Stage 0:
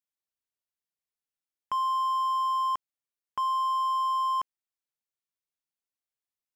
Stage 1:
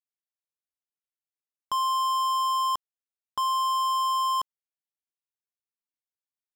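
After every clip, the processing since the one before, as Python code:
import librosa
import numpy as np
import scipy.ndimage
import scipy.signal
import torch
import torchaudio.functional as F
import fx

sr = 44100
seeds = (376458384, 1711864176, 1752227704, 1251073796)

y = fx.leveller(x, sr, passes=5)
y = y * 10.0 ** (-1.5 / 20.0)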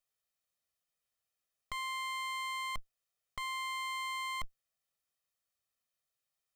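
y = fx.lower_of_two(x, sr, delay_ms=1.6)
y = fx.over_compress(y, sr, threshold_db=-37.0, ratio=-1.0)
y = y * 10.0 ** (-1.0 / 20.0)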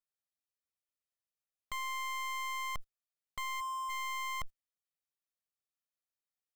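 y = fx.spec_box(x, sr, start_s=3.61, length_s=0.28, low_hz=1100.0, high_hz=6500.0, gain_db=-26)
y = fx.leveller(y, sr, passes=3)
y = y * 10.0 ** (-5.0 / 20.0)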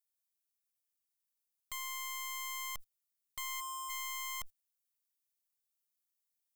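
y = librosa.effects.preemphasis(x, coef=0.8, zi=[0.0])
y = fx.rider(y, sr, range_db=10, speed_s=0.5)
y = y * 10.0 ** (7.0 / 20.0)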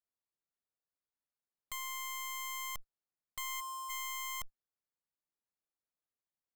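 y = fx.wiener(x, sr, points=15)
y = y * 10.0 ** (1.5 / 20.0)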